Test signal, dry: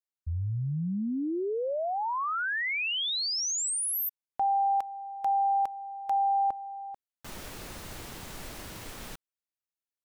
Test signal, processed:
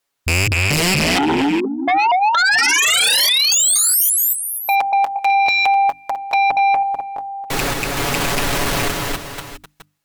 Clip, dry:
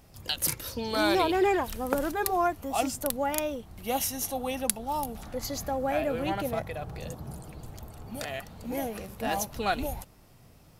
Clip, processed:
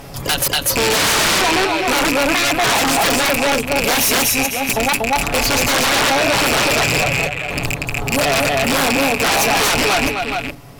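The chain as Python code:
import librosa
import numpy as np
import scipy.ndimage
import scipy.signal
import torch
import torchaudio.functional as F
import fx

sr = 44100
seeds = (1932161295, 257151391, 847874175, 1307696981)

p1 = fx.rattle_buzz(x, sr, strikes_db=-39.0, level_db=-16.0)
p2 = fx.high_shelf(p1, sr, hz=4000.0, db=-6.5)
p3 = fx.step_gate(p2, sr, bpm=64, pattern='xx.xxx..x.xx', floor_db=-60.0, edge_ms=4.5)
p4 = fx.rider(p3, sr, range_db=5, speed_s=2.0)
p5 = p3 + (p4 * librosa.db_to_amplitude(-1.5))
p6 = fx.hum_notches(p5, sr, base_hz=50, count=6)
p7 = p6 + 0.53 * np.pad(p6, (int(7.1 * sr / 1000.0), 0))[:len(p6)]
p8 = 10.0 ** (-17.0 / 20.0) * np.tanh(p7 / 10.0 ** (-17.0 / 20.0))
p9 = p8 + fx.echo_multitap(p8, sr, ms=(239, 260, 495, 658), db=(-3.5, -18.5, -15.0, -15.0), dry=0)
p10 = fx.fold_sine(p9, sr, drive_db=14, ceiling_db=-11.5)
y = fx.low_shelf(p10, sr, hz=290.0, db=-5.0)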